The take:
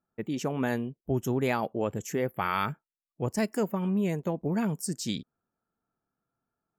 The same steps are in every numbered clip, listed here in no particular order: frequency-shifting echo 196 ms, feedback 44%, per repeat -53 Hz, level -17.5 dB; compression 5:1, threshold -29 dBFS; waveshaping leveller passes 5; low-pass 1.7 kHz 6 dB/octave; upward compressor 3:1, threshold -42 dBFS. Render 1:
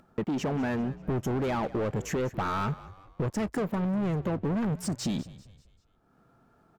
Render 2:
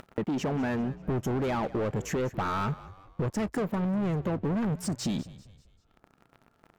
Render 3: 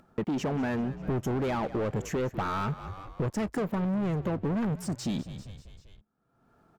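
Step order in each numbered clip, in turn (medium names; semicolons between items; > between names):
waveshaping leveller > low-pass > compression > upward compressor > frequency-shifting echo; upward compressor > waveshaping leveller > low-pass > compression > frequency-shifting echo; waveshaping leveller > frequency-shifting echo > compression > low-pass > upward compressor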